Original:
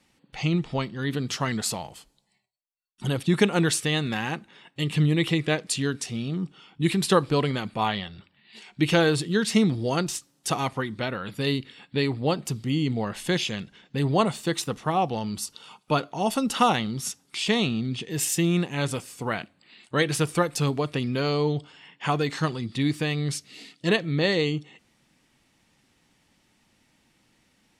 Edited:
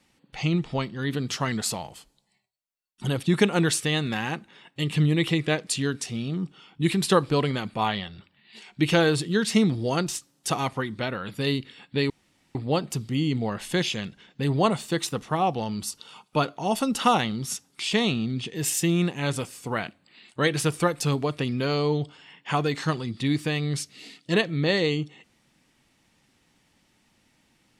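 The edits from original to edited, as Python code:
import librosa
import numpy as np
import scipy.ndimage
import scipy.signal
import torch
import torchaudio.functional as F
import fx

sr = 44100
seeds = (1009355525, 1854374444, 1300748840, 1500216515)

y = fx.edit(x, sr, fx.insert_room_tone(at_s=12.1, length_s=0.45), tone=tone)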